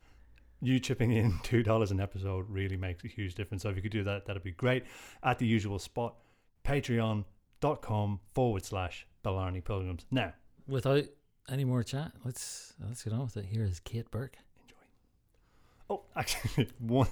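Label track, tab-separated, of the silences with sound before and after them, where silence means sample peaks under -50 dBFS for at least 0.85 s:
14.710000	15.820000	silence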